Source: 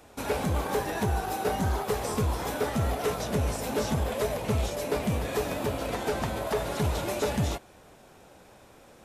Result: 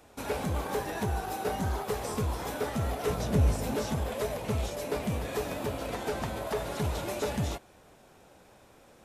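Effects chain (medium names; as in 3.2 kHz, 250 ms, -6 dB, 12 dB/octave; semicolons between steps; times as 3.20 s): 3.07–3.76 s: bass shelf 260 Hz +9.5 dB; trim -3.5 dB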